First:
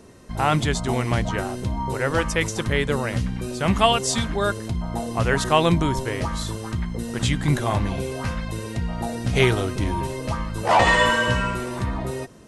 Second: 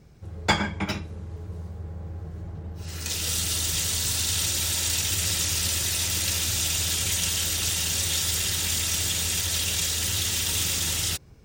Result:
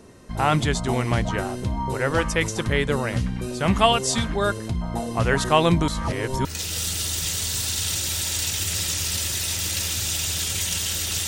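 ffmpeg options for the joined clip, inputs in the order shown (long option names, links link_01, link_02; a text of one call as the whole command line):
ffmpeg -i cue0.wav -i cue1.wav -filter_complex "[0:a]apad=whole_dur=11.27,atrim=end=11.27,asplit=2[link_01][link_02];[link_01]atrim=end=5.882[link_03];[link_02]atrim=start=5.878:end=6.452,asetpts=PTS-STARTPTS,areverse[link_04];[1:a]atrim=start=2.958:end=7.78[link_05];[link_03][link_04]acrossfade=duration=0.004:curve1=hsin:curve2=hsin[link_06];[link_06][link_05]acrossfade=duration=0.004:curve1=hsin:curve2=hsin" out.wav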